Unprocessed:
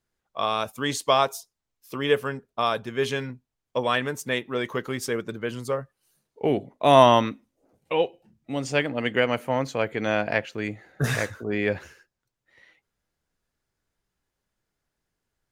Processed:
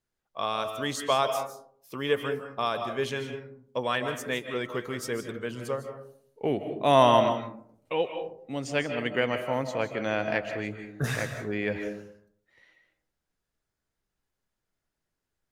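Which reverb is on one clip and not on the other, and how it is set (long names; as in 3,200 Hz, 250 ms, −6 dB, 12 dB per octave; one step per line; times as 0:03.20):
comb and all-pass reverb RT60 0.62 s, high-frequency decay 0.35×, pre-delay 115 ms, DRR 7 dB
level −4.5 dB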